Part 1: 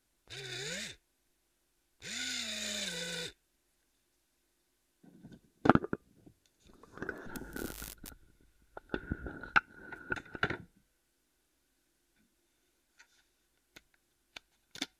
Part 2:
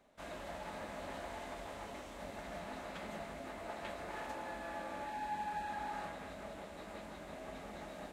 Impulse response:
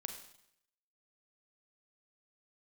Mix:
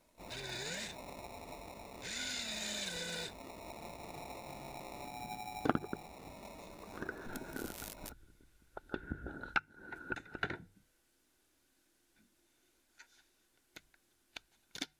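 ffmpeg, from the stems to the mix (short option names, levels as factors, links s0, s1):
-filter_complex "[0:a]bandreject=f=50:t=h:w=6,bandreject=f=100:t=h:w=6,bandreject=f=150:t=h:w=6,volume=1.26[s0];[1:a]acrusher=samples=28:mix=1:aa=0.000001,volume=0.708[s1];[s0][s1]amix=inputs=2:normalize=0,acompressor=threshold=0.00562:ratio=1.5"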